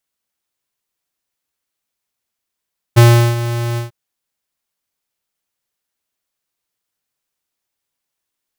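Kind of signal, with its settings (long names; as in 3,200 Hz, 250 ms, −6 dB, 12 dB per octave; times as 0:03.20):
note with an ADSR envelope square 118 Hz, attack 20 ms, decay 372 ms, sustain −14 dB, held 0.81 s, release 136 ms −5 dBFS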